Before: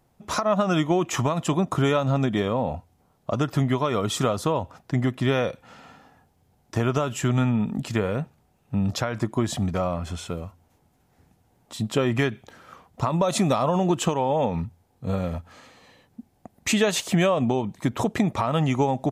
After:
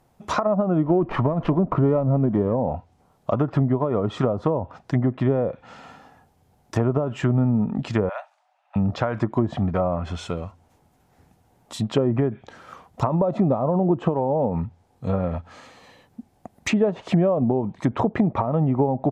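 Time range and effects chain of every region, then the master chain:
0:00.84–0:02.55: mu-law and A-law mismatch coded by mu + notch filter 800 Hz + windowed peak hold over 5 samples
0:08.09–0:08.76: Butterworth high-pass 590 Hz 96 dB per octave + low-pass that shuts in the quiet parts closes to 2,600 Hz, open at −37 dBFS
whole clip: parametric band 830 Hz +3 dB 1.7 octaves; treble cut that deepens with the level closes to 580 Hz, closed at −17.5 dBFS; level +2 dB

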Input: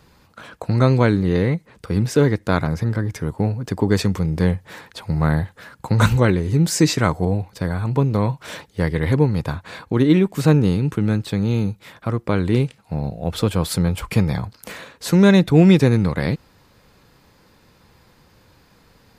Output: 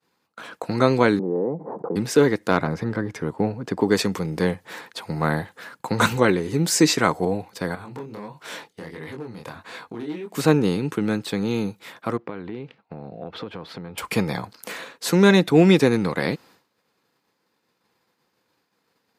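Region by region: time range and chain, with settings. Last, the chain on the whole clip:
0:01.19–0:01.96: elliptic band-pass filter 140–850 Hz, stop band 50 dB + low-shelf EQ 250 Hz −11.5 dB + envelope flattener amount 70%
0:02.51–0:03.81: low-pass filter 3,100 Hz 6 dB per octave + low-shelf EQ 210 Hz +3.5 dB + hard clipping −3.5 dBFS
0:07.75–0:10.35: hard clipping −8.5 dBFS + downward compressor 8 to 1, threshold −24 dBFS + chorus effect 1.5 Hz, delay 19.5 ms, depth 7.6 ms
0:12.17–0:13.98: downward compressor 8 to 1, threshold −25 dBFS + high-frequency loss of the air 300 metres
whole clip: downward expander −42 dBFS; high-pass filter 250 Hz 12 dB per octave; notch filter 590 Hz, Q 14; level +1.5 dB

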